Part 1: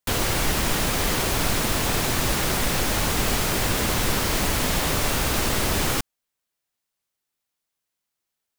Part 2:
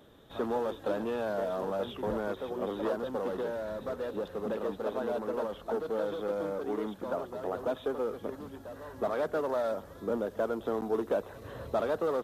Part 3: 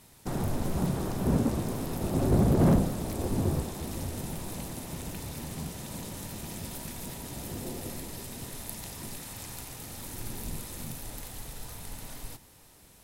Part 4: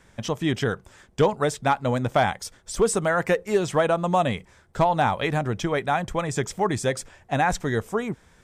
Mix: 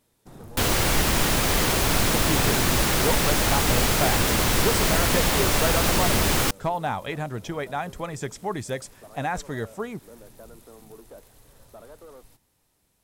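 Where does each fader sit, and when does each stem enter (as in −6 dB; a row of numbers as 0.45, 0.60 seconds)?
+1.5, −16.5, −13.5, −6.0 decibels; 0.50, 0.00, 0.00, 1.85 seconds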